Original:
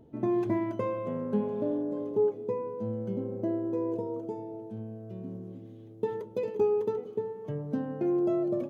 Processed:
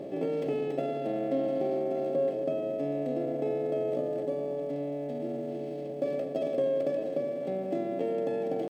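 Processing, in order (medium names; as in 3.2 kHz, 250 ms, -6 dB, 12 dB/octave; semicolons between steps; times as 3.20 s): spectral levelling over time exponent 0.4; high-pass 150 Hz 6 dB/octave; high-order bell 860 Hz -15 dB 1 oct; pitch shift +4.5 st; band-stop 480 Hz, Q 12; trim -3.5 dB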